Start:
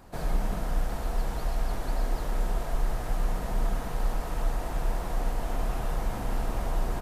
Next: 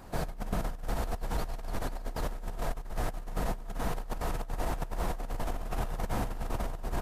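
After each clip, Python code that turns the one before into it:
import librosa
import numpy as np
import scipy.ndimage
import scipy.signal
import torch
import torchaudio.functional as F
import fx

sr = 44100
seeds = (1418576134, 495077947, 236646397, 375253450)

y = fx.over_compress(x, sr, threshold_db=-30.0, ratio=-0.5)
y = F.gain(torch.from_numpy(y), -1.5).numpy()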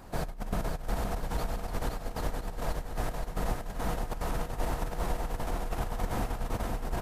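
y = fx.echo_feedback(x, sr, ms=520, feedback_pct=42, wet_db=-4)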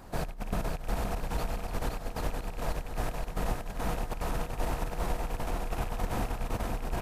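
y = fx.rattle_buzz(x, sr, strikes_db=-37.0, level_db=-37.0)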